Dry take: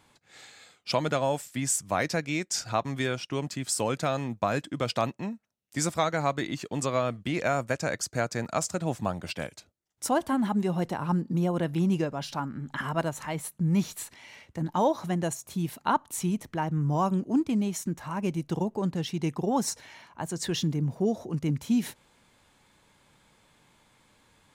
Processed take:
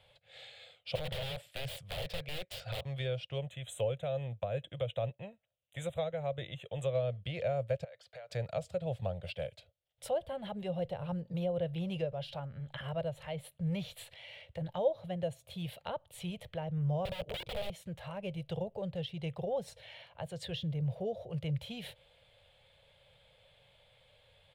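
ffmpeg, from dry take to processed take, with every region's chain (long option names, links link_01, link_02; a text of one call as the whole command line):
ffmpeg -i in.wav -filter_complex "[0:a]asettb=1/sr,asplit=3[link_01][link_02][link_03];[link_01]atrim=end=0.954[link_04];[link_02]atrim=start=0.95:end=2.86,asetpts=PTS-STARTPTS,afade=type=in:duration=0.004:curve=qsin,afade=type=out:start_time=1.906:duration=0.004:curve=qsin,equalizer=frequency=1100:width_type=o:width=2.5:gain=5.5,aeval=exprs='(mod(15*val(0)+1,2)-1)/15':channel_layout=same[link_05];[link_03]atrim=start=2.856[link_06];[link_04][link_05]acrossfade=duration=0.004:curve1=hsin:curve2=qsin[link_07];[link_07][link_06]acrossfade=duration=0.004:curve1=qsin:curve2=hsin,asettb=1/sr,asplit=3[link_08][link_09][link_10];[link_08]atrim=end=3.384[link_11];[link_09]atrim=start=3.38:end=6.95,asetpts=PTS-STARTPTS,afade=type=in:duration=0.004:curve=qsin,afade=type=out:start_time=3.566:duration=0.004:curve=qsin,tremolo=f=2.3:d=0.33,asuperstop=centerf=4900:order=12:qfactor=2.2[link_12];[link_10]atrim=start=6.946[link_13];[link_11][link_12]acrossfade=duration=0.004:curve1=hsin:curve2=qsin[link_14];[link_14][link_13]acrossfade=duration=0.004:curve1=qsin:curve2=hsin,asettb=1/sr,asplit=3[link_15][link_16][link_17];[link_15]atrim=end=7.844[link_18];[link_16]atrim=start=7.84:end=8.3,asetpts=PTS-STARTPTS,afade=type=in:duration=0.004:curve=qsin,afade=type=out:start_time=0.456:duration=0.004:curve=qsin,acrossover=split=500 4800:gain=0.126 1 0.224[link_19][link_20][link_21];[link_19][link_20][link_21]amix=inputs=3:normalize=0,bandreject=frequency=2600:width=26,acompressor=threshold=-44dB:ratio=8:attack=3.2:release=140:knee=1:detection=peak[link_22];[link_17]atrim=start=8.296[link_23];[link_18][link_22]acrossfade=duration=0.004:curve1=hsin:curve2=qsin[link_24];[link_24][link_23]acrossfade=duration=0.004:curve1=qsin:curve2=hsin,asettb=1/sr,asplit=3[link_25][link_26][link_27];[link_25]atrim=end=17.054[link_28];[link_26]atrim=start=17.05:end=17.7,asetpts=PTS-STARTPTS,afade=type=in:duration=0.004:curve=qsin,afade=type=out:start_time=0.646:duration=0.004:curve=qsin,aecho=1:1:6.7:0.94,atrim=end_sample=28665,aeval=exprs='(mod(17.8*val(0)+1,2)-1)/17.8':channel_layout=same[link_29];[link_27]atrim=start=17.696[link_30];[link_28][link_29]acrossfade=duration=0.004:curve1=hsin:curve2=qsin[link_31];[link_31][link_30]acrossfade=duration=0.004:curve1=qsin:curve2=hsin,firequalizer=gain_entry='entry(120,0);entry(270,-28);entry(530,7);entry(980,-12);entry(3200,5);entry(6000,-19);entry(9200,-12)':delay=0.05:min_phase=1,acrossover=split=450[link_32][link_33];[link_33]acompressor=threshold=-45dB:ratio=2.5[link_34];[link_32][link_34]amix=inputs=2:normalize=0" out.wav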